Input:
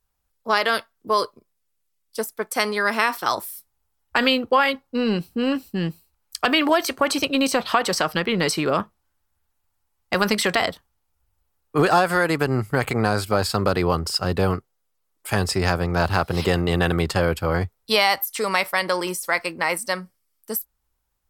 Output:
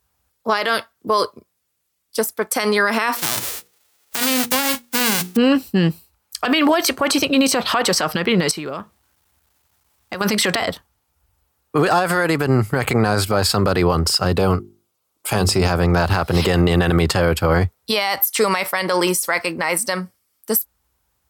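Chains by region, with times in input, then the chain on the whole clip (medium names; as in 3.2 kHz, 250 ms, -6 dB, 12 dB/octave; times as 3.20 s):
3.16–5.35 s: formants flattened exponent 0.1 + high-pass 70 Hz + hum notches 60/120/180/240/300/360/420/480 Hz
8.51–10.21 s: compression 2.5:1, threshold -41 dBFS + word length cut 12-bit, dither none
14.36–15.72 s: peaking EQ 1.8 kHz -8 dB 0.36 oct + hum notches 50/100/150/200/250/300/350/400 Hz
whole clip: high-pass 52 Hz 24 dB/octave; loudness maximiser +15 dB; trim -6 dB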